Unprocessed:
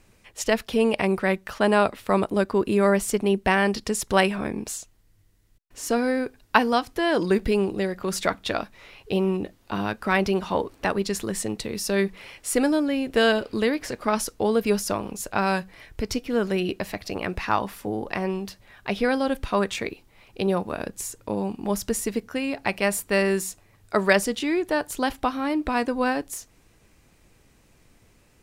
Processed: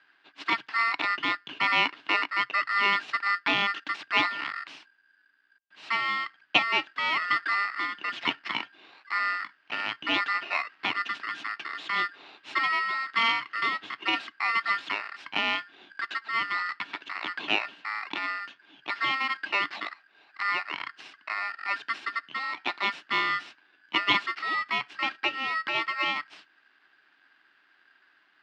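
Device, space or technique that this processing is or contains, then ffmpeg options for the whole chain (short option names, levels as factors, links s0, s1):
ring modulator pedal into a guitar cabinet: -af "aeval=exprs='val(0)*sgn(sin(2*PI*1600*n/s))':c=same,highpass=270,highpass=92,equalizer=f=93:t=q:w=4:g=-10,equalizer=f=130:t=q:w=4:g=8,equalizer=f=290:t=q:w=4:g=8,equalizer=f=500:t=q:w=4:g=-9,equalizer=f=2800:t=q:w=4:g=7,lowpass=f=3700:w=0.5412,lowpass=f=3700:w=1.3066,volume=0.562"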